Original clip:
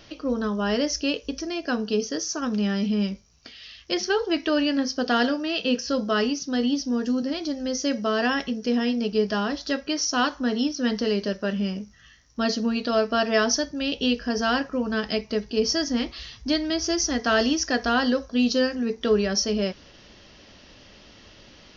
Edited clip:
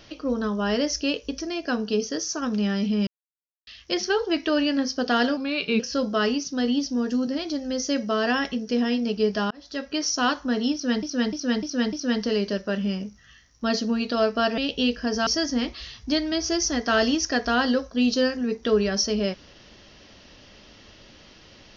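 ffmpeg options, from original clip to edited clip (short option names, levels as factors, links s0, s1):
-filter_complex "[0:a]asplit=12[s0][s1][s2][s3][s4][s5][s6][s7][s8][s9][s10][s11];[s0]atrim=end=3.07,asetpts=PTS-STARTPTS,afade=t=out:st=3.066:d=0.004:c=hsin[s12];[s1]atrim=start=3.07:end=3.67,asetpts=PTS-STARTPTS,volume=0[s13];[s2]atrim=start=3.67:end=5.374,asetpts=PTS-STARTPTS,afade=t=in:d=0.004:c=hsin[s14];[s3]atrim=start=5.37:end=5.75,asetpts=PTS-STARTPTS,asetrate=39249,aresample=44100,atrim=end_sample=18829,asetpts=PTS-STARTPTS[s15];[s4]atrim=start=5.746:end=9.46,asetpts=PTS-STARTPTS,afade=t=out:st=3.71:d=0.004:c=hsin[s16];[s5]atrim=start=9.46:end=10.982,asetpts=PTS-STARTPTS,afade=t=in:d=0.47[s17];[s6]atrim=start=10.678:end=10.982[s18];[s7]atrim=start=10.678:end=10.982[s19];[s8]atrim=start=10.678:end=10.982[s20];[s9]atrim=start=10.678:end=13.332[s21];[s10]atrim=start=13.808:end=14.502[s22];[s11]atrim=start=15.648[s23];[s12][s13][s14]concat=n=3:v=0:a=1[s24];[s24][s15]acrossfade=d=0.004:c1=hsin:c2=hsin[s25];[s16][s17]concat=n=2:v=0:a=1[s26];[s25][s26]acrossfade=d=0.004:c1=hsin:c2=hsin[s27];[s27][s18]acrossfade=d=0.004:c1=hsin:c2=hsin[s28];[s28][s19]acrossfade=d=0.004:c1=hsin:c2=hsin[s29];[s29][s20]acrossfade=d=0.004:c1=hsin:c2=hsin[s30];[s30][s21]acrossfade=d=0.004:c1=hsin:c2=hsin[s31];[s31][s22]acrossfade=d=0.004:c1=hsin:c2=hsin[s32];[s32][s23]acrossfade=d=0.004:c1=hsin:c2=hsin"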